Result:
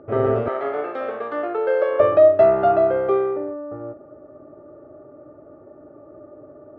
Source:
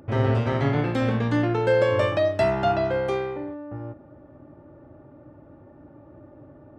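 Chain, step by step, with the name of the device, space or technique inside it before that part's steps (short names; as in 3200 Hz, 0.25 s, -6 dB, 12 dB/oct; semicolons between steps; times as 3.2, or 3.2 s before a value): inside a cardboard box (LPF 2700 Hz 12 dB/oct; small resonant body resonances 430/610/1200 Hz, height 18 dB, ringing for 25 ms); 0.48–2 HPF 590 Hz 12 dB/oct; gain -8 dB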